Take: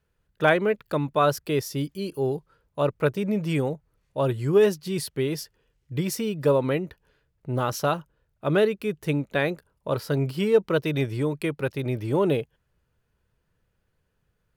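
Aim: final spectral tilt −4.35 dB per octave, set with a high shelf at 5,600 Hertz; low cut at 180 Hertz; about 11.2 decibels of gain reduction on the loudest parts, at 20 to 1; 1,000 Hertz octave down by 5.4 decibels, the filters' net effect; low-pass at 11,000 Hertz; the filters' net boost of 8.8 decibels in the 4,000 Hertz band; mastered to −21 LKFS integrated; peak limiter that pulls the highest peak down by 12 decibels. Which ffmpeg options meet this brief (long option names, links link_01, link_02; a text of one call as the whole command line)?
ffmpeg -i in.wav -af "highpass=180,lowpass=11000,equalizer=frequency=1000:width_type=o:gain=-8.5,equalizer=frequency=4000:width_type=o:gain=9,highshelf=frequency=5600:gain=7.5,acompressor=threshold=-25dB:ratio=20,volume=14.5dB,alimiter=limit=-10.5dB:level=0:latency=1" out.wav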